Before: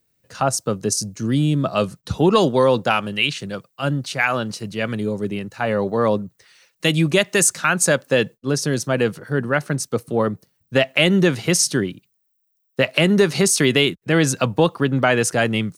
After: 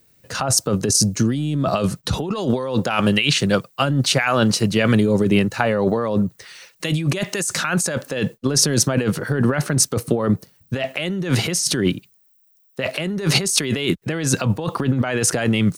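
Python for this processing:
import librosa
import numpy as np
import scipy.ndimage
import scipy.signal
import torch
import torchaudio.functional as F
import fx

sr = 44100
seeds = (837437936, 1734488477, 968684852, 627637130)

y = fx.over_compress(x, sr, threshold_db=-25.0, ratio=-1.0)
y = F.gain(torch.from_numpy(y), 5.5).numpy()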